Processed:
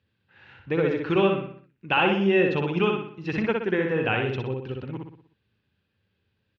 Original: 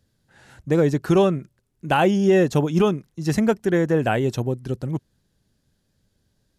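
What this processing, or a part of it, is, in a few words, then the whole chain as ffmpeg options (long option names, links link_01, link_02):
guitar cabinet: -filter_complex "[0:a]lowpass=7500,highpass=85,equalizer=frequency=94:width_type=q:width=4:gain=8,equalizer=frequency=150:width_type=q:width=4:gain=-4,equalizer=frequency=270:width_type=q:width=4:gain=-4,equalizer=frequency=660:width_type=q:width=4:gain=-9,equalizer=frequency=2600:width_type=q:width=4:gain=9,lowpass=frequency=3600:width=0.5412,lowpass=frequency=3600:width=1.3066,lowshelf=frequency=360:gain=-6,asplit=2[link_01][link_02];[link_02]adelay=61,lowpass=frequency=5000:poles=1,volume=-3dB,asplit=2[link_03][link_04];[link_04]adelay=61,lowpass=frequency=5000:poles=1,volume=0.48,asplit=2[link_05][link_06];[link_06]adelay=61,lowpass=frequency=5000:poles=1,volume=0.48,asplit=2[link_07][link_08];[link_08]adelay=61,lowpass=frequency=5000:poles=1,volume=0.48,asplit=2[link_09][link_10];[link_10]adelay=61,lowpass=frequency=5000:poles=1,volume=0.48,asplit=2[link_11][link_12];[link_12]adelay=61,lowpass=frequency=5000:poles=1,volume=0.48[link_13];[link_01][link_03][link_05][link_07][link_09][link_11][link_13]amix=inputs=7:normalize=0,volume=-2dB"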